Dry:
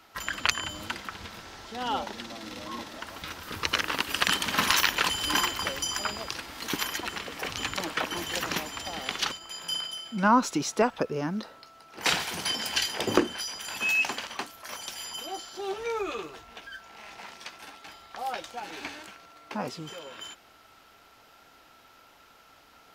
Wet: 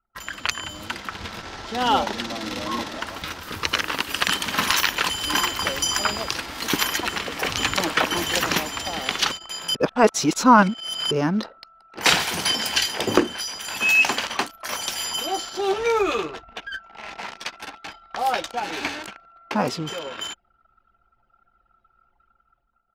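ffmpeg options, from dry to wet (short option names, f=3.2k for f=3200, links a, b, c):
-filter_complex "[0:a]asplit=3[a][b][c];[a]atrim=end=9.752[d];[b]atrim=start=9.748:end=11.112,asetpts=PTS-STARTPTS,areverse[e];[c]atrim=start=11.108[f];[d][e]acrossfade=d=0.004:c1=hsin:c2=hsin[g];[g][f]acrossfade=d=0.004:c1=hsin:c2=hsin,anlmdn=0.0398,dynaudnorm=f=180:g=7:m=11.5dB,volume=-1dB"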